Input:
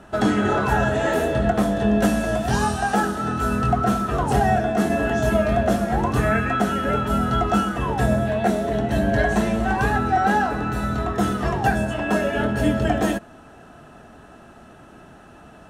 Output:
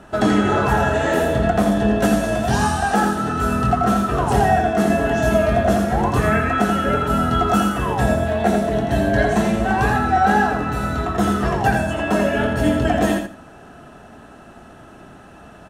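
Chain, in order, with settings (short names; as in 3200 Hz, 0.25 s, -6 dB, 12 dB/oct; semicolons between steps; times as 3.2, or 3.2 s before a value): 7.48–7.95 high shelf 10000 Hz +10.5 dB; feedback echo 84 ms, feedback 19%, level -5.5 dB; gain +2 dB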